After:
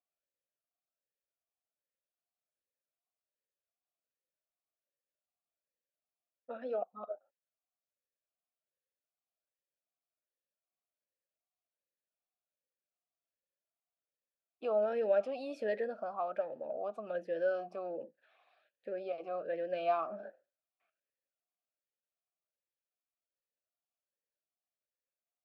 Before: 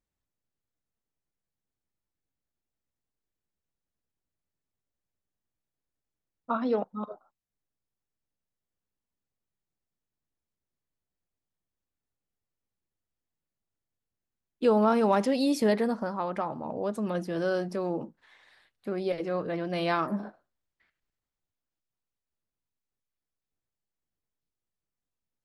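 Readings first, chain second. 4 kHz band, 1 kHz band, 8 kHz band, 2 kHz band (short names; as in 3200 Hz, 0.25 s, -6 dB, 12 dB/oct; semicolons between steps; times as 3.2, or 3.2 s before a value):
under -15 dB, -9.0 dB, under -25 dB, -9.0 dB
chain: in parallel at -3 dB: compressor, threshold -33 dBFS, peak gain reduction 14 dB; on the sum: vowel sweep a-e 1.3 Hz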